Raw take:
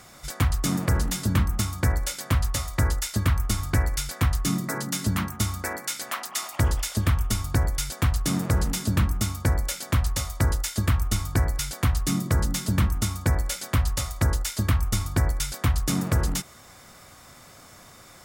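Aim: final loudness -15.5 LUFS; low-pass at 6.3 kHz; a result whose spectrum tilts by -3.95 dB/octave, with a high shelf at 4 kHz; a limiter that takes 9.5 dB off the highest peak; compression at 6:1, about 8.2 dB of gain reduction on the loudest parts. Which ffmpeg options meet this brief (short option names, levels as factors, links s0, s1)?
-af "lowpass=6300,highshelf=f=4000:g=7,acompressor=threshold=0.0501:ratio=6,volume=7.94,alimiter=limit=0.562:level=0:latency=1"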